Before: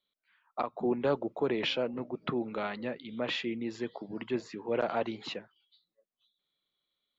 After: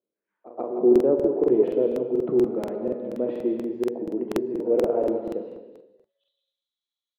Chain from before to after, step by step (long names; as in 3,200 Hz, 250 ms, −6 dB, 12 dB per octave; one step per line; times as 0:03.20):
tilt shelving filter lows +8.5 dB, about 870 Hz
echo ahead of the sound 131 ms −14 dB
band-pass filter sweep 420 Hz → 6,100 Hz, 0:05.64–0:06.40
on a send: single-tap delay 168 ms −8.5 dB
on the sum: reverb whose tail is shaped and stops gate 500 ms falling, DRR 3.5 dB
regular buffer underruns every 0.24 s, samples 2,048, repeat, from 0:00.91
level +7 dB